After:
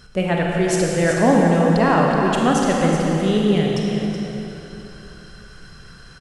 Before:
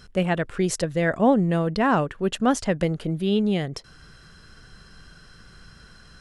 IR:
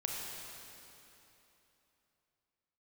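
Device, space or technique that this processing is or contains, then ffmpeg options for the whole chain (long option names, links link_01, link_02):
cave: -filter_complex "[0:a]aecho=1:1:374:0.376[link_01];[1:a]atrim=start_sample=2205[link_02];[link_01][link_02]afir=irnorm=-1:irlink=0,volume=2.5dB"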